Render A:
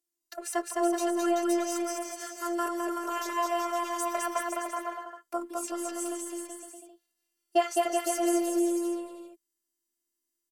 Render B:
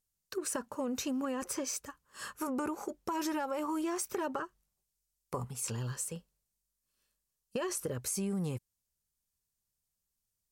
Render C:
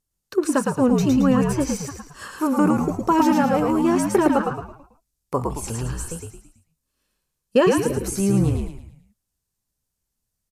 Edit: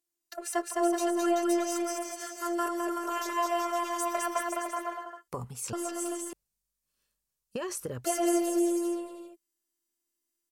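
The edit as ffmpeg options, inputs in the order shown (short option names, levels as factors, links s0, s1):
-filter_complex "[1:a]asplit=2[s0][s1];[0:a]asplit=3[s2][s3][s4];[s2]atrim=end=5.282[s5];[s0]atrim=start=5.278:end=5.732[s6];[s3]atrim=start=5.728:end=6.332[s7];[s1]atrim=start=6.328:end=8.052[s8];[s4]atrim=start=8.048[s9];[s5][s6]acrossfade=d=0.004:c1=hsin:c2=hsin[s10];[s10][s7]acrossfade=d=0.004:c1=hsin:c2=hsin[s11];[s11][s8]acrossfade=d=0.004:c1=hsin:c2=hsin[s12];[s12][s9]acrossfade=d=0.004:c1=hsin:c2=hsin"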